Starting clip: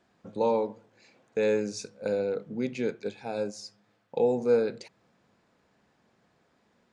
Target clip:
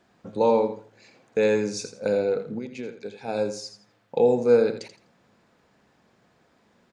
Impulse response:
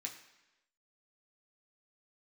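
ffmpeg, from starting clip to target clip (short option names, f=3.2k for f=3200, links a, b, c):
-filter_complex "[0:a]asettb=1/sr,asplit=3[a][b][c];[a]atrim=end=2.584[d];[b]atrim=start=2.58:end=3.28,asetpts=PTS-STARTPTS,afade=t=in:d=0.004:c=qsin,afade=t=out:st=0.696:d=0.004:c=qsin,acompressor=threshold=-37dB:ratio=6[e];[c]atrim=start=3.276[f];[d][e]acrossfade=d=0.004:c1=hsin:c2=qsin[g];[g][f]acrossfade=d=0.004:c1=qsin:c2=hsin,aecho=1:1:83|166|249:0.299|0.0687|0.0158,volume=5dB"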